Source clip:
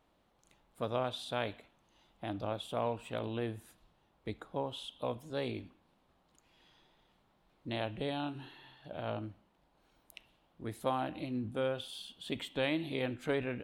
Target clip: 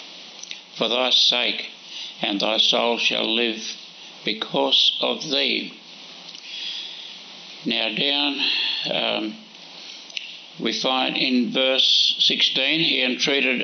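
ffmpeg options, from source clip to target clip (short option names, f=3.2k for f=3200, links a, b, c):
-filter_complex "[0:a]acrossover=split=460|2500[a][b][c];[c]asoftclip=type=tanh:threshold=-39.5dB[d];[a][b][d]amix=inputs=3:normalize=0,aexciter=amount=11.1:drive=2.7:freq=2.3k,asplit=2[e][f];[f]acompressor=threshold=-38dB:ratio=16,volume=0.5dB[g];[e][g]amix=inputs=2:normalize=0,bandreject=f=219.6:t=h:w=4,bandreject=f=439.2:t=h:w=4,acompressor=mode=upward:threshold=-45dB:ratio=2.5,afftfilt=real='re*between(b*sr/4096,160,6100)':imag='im*between(b*sr/4096,160,6100)':win_size=4096:overlap=0.75,alimiter=level_in=21dB:limit=-1dB:release=50:level=0:latency=1,volume=-7.5dB"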